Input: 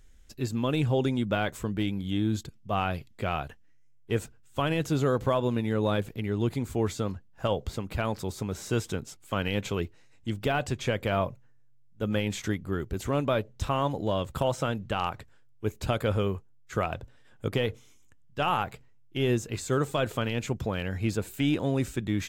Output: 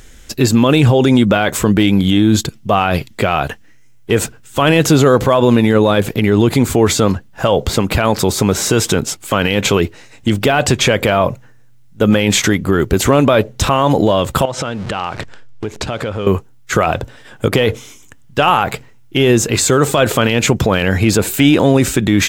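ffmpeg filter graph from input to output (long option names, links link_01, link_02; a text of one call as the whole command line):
ffmpeg -i in.wav -filter_complex "[0:a]asettb=1/sr,asplit=3[link_01][link_02][link_03];[link_01]atrim=end=14.454[link_04];[link_02]atrim=start=14.45:end=16.27,asetpts=PTS-STARTPTS,afade=type=in:duration=0.004:curve=qsin,afade=type=out:start_time=1.816:duration=0.004:curve=qsin,aeval=exprs='val(0)+0.5*0.0075*sgn(val(0))':channel_layout=same,lowpass=6300,acompressor=threshold=-39dB:ratio=12:attack=3.2:release=140:knee=1:detection=peak[link_05];[link_03]atrim=start=16.266[link_06];[link_04][link_05]acrossfade=duration=0.004:curve1=hsin:curve2=qsin[link_07];[link_07][link_06]acrossfade=duration=0.004:curve1=qsin:curve2=hsin,lowshelf=frequency=110:gain=-10.5,alimiter=level_in=24.5dB:limit=-1dB:release=50:level=0:latency=1,volume=-1dB" out.wav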